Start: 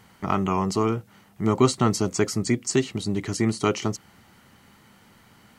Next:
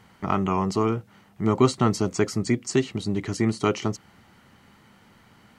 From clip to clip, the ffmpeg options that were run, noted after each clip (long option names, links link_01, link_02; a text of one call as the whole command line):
ffmpeg -i in.wav -af "highshelf=frequency=6500:gain=-8.5" out.wav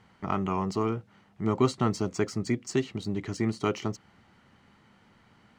ffmpeg -i in.wav -af "adynamicsmooth=sensitivity=6.5:basefreq=7800,volume=-5dB" out.wav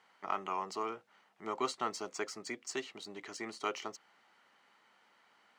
ffmpeg -i in.wav -af "highpass=600,volume=-3.5dB" out.wav